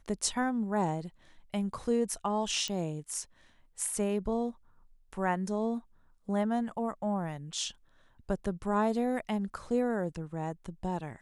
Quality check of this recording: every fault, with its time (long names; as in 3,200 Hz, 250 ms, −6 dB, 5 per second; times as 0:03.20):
0:02.68: click −20 dBFS